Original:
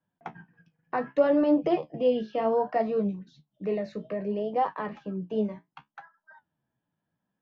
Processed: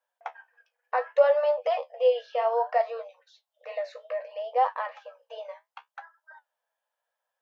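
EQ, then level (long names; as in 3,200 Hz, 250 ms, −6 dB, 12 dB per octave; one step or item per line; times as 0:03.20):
linear-phase brick-wall high-pass 470 Hz
+3.0 dB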